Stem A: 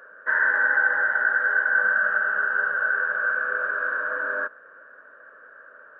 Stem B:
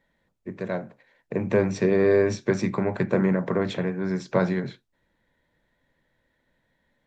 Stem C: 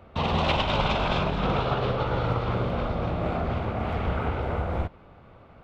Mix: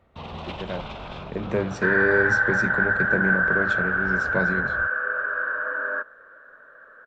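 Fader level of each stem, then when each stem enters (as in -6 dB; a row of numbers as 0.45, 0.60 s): -0.5, -3.5, -11.5 dB; 1.55, 0.00, 0.00 s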